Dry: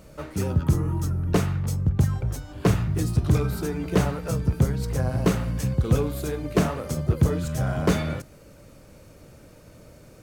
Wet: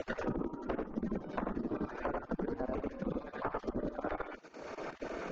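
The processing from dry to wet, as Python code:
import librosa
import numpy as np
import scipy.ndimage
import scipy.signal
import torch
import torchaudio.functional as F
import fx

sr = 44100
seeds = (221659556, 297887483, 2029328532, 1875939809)

y = fx.spec_dropout(x, sr, seeds[0], share_pct=26)
y = fx.stretch_grains(y, sr, factor=0.52, grain_ms=55.0)
y = y + 10.0 ** (-3.0 / 20.0) * np.pad(y, (int(87 * sr / 1000.0), 0))[:len(y)]
y = fx.env_lowpass_down(y, sr, base_hz=1200.0, full_db=-22.0)
y = fx.bass_treble(y, sr, bass_db=8, treble_db=5)
y = fx.spec_gate(y, sr, threshold_db=-15, keep='weak')
y = fx.high_shelf(y, sr, hz=3000.0, db=-8.0)
y = fx.level_steps(y, sr, step_db=12)
y = scipy.signal.sosfilt(scipy.signal.butter(12, 6800.0, 'lowpass', fs=sr, output='sos'), y)
y = fx.band_squash(y, sr, depth_pct=100)
y = y * librosa.db_to_amplitude(1.0)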